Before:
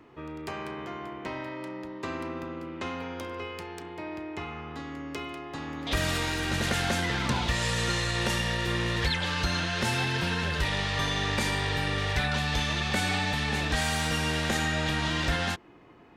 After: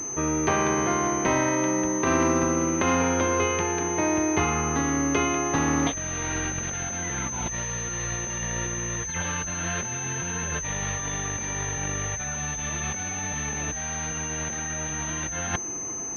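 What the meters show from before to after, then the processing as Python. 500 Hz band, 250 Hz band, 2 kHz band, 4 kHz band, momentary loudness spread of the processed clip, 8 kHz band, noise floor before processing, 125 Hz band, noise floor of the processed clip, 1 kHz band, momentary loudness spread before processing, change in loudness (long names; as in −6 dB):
+6.5 dB, +6.0 dB, −1.0 dB, −8.5 dB, 6 LU, +14.5 dB, −42 dBFS, −0.5 dB, −33 dBFS, +4.5 dB, 11 LU, +3.5 dB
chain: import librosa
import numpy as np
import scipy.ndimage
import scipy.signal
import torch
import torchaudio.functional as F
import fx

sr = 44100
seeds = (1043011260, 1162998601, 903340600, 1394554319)

y = fx.over_compress(x, sr, threshold_db=-34.0, ratio=-0.5)
y = fx.pwm(y, sr, carrier_hz=6200.0)
y = y * librosa.db_to_amplitude(8.0)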